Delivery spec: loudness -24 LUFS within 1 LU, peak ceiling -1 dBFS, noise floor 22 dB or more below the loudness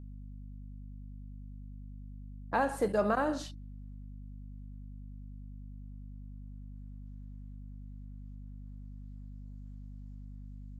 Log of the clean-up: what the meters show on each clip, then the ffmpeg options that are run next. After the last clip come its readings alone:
hum 50 Hz; highest harmonic 250 Hz; hum level -43 dBFS; loudness -40.0 LUFS; peak level -17.0 dBFS; loudness target -24.0 LUFS
-> -af "bandreject=f=50:t=h:w=4,bandreject=f=100:t=h:w=4,bandreject=f=150:t=h:w=4,bandreject=f=200:t=h:w=4,bandreject=f=250:t=h:w=4"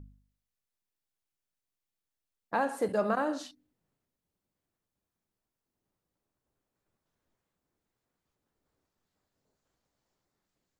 hum not found; loudness -31.5 LUFS; peak level -16.5 dBFS; loudness target -24.0 LUFS
-> -af "volume=2.37"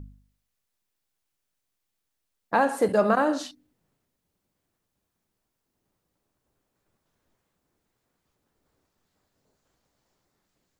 loudness -24.0 LUFS; peak level -9.0 dBFS; noise floor -81 dBFS

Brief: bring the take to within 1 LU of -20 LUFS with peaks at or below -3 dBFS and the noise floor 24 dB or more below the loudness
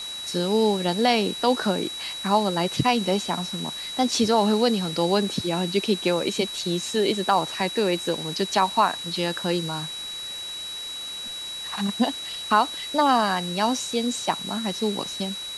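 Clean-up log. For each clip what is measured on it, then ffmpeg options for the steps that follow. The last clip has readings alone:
steady tone 3.9 kHz; tone level -32 dBFS; noise floor -34 dBFS; noise floor target -48 dBFS; loudness -24.0 LUFS; peak level -6.0 dBFS; loudness target -20.0 LUFS
-> -af "bandreject=f=3900:w=30"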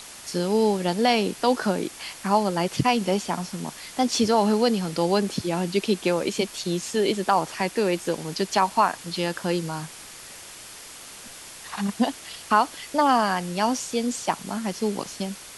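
steady tone not found; noise floor -43 dBFS; noise floor target -49 dBFS
-> -af "afftdn=nr=6:nf=-43"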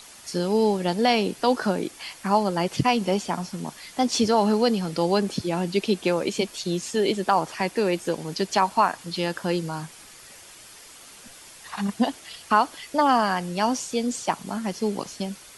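noise floor -47 dBFS; noise floor target -49 dBFS
-> -af "afftdn=nr=6:nf=-47"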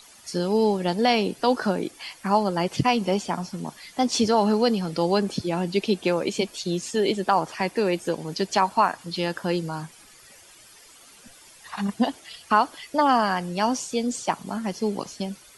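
noise floor -51 dBFS; loudness -24.5 LUFS; peak level -6.0 dBFS; loudness target -20.0 LUFS
-> -af "volume=1.68,alimiter=limit=0.708:level=0:latency=1"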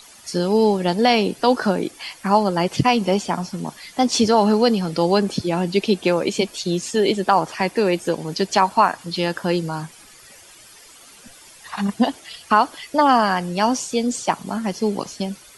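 loudness -20.0 LUFS; peak level -3.0 dBFS; noise floor -46 dBFS

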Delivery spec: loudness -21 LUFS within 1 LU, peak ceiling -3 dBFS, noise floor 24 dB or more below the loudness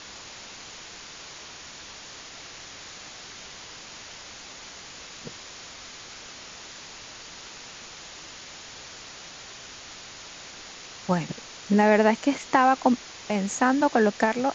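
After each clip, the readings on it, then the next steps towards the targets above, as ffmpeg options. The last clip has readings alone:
noise floor -44 dBFS; noise floor target -48 dBFS; loudness -23.5 LUFS; peak level -6.0 dBFS; loudness target -21.0 LUFS
-> -af "afftdn=nr=6:nf=-44"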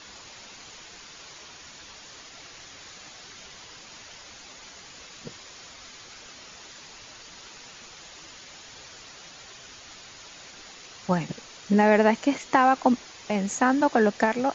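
noise floor -47 dBFS; loudness -23.0 LUFS; peak level -6.0 dBFS; loudness target -21.0 LUFS
-> -af "volume=1.26"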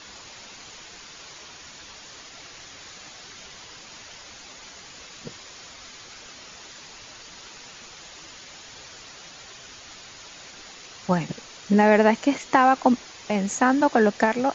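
loudness -21.0 LUFS; peak level -4.0 dBFS; noise floor -45 dBFS

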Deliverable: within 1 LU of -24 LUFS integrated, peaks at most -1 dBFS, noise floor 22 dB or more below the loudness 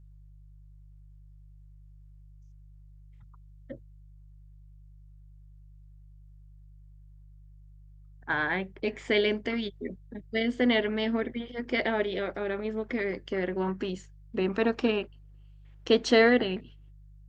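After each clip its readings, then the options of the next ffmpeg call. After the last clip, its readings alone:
hum 50 Hz; highest harmonic 150 Hz; hum level -49 dBFS; loudness -28.5 LUFS; peak level -9.5 dBFS; loudness target -24.0 LUFS
-> -af "bandreject=f=50:t=h:w=4,bandreject=f=100:t=h:w=4,bandreject=f=150:t=h:w=4"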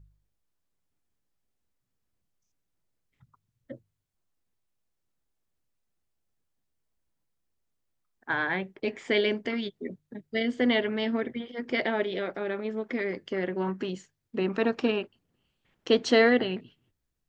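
hum not found; loudness -28.5 LUFS; peak level -9.5 dBFS; loudness target -24.0 LUFS
-> -af "volume=1.68"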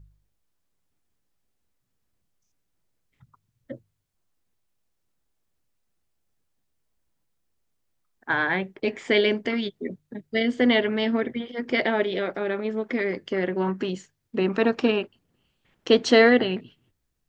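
loudness -24.0 LUFS; peak level -5.0 dBFS; noise floor -76 dBFS

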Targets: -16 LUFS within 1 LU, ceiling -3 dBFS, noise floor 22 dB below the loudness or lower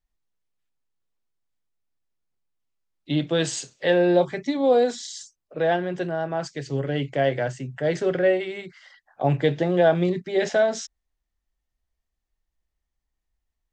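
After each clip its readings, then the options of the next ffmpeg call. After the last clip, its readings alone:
loudness -23.5 LUFS; peak level -7.5 dBFS; loudness target -16.0 LUFS
-> -af "volume=2.37,alimiter=limit=0.708:level=0:latency=1"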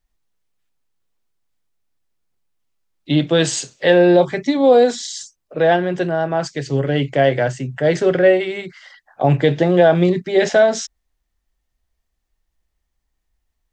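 loudness -16.5 LUFS; peak level -3.0 dBFS; noise floor -74 dBFS

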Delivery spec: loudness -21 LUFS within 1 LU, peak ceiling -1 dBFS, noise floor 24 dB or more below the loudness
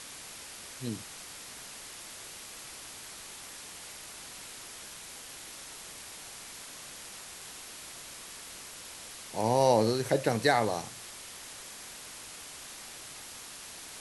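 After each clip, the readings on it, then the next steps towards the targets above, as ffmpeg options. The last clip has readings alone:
noise floor -46 dBFS; noise floor target -60 dBFS; loudness -35.5 LUFS; peak level -11.5 dBFS; loudness target -21.0 LUFS
-> -af "afftdn=nr=14:nf=-46"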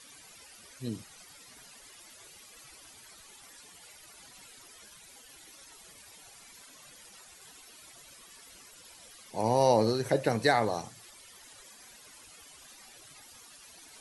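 noise floor -54 dBFS; loudness -28.5 LUFS; peak level -11.5 dBFS; loudness target -21.0 LUFS
-> -af "volume=2.37"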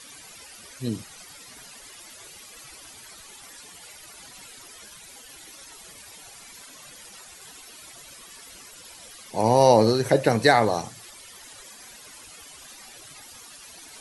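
loudness -21.0 LUFS; peak level -4.0 dBFS; noise floor -46 dBFS

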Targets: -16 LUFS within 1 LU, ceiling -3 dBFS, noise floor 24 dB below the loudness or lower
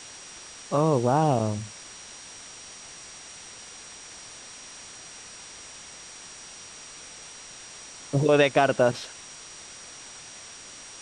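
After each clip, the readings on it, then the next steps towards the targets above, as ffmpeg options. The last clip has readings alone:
steady tone 5.7 kHz; tone level -47 dBFS; noise floor -45 dBFS; noise floor target -48 dBFS; loudness -23.5 LUFS; peak level -7.5 dBFS; loudness target -16.0 LUFS
-> -af "bandreject=f=5700:w=30"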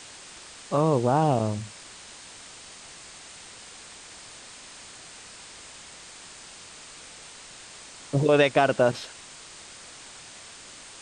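steady tone not found; noise floor -46 dBFS; noise floor target -48 dBFS
-> -af "afftdn=nr=6:nf=-46"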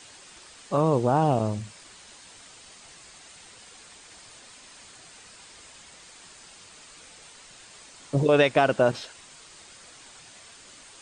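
noise floor -50 dBFS; loudness -23.5 LUFS; peak level -7.5 dBFS; loudness target -16.0 LUFS
-> -af "volume=2.37,alimiter=limit=0.708:level=0:latency=1"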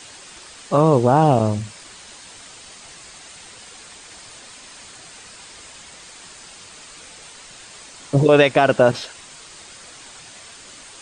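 loudness -16.5 LUFS; peak level -3.0 dBFS; noise floor -42 dBFS

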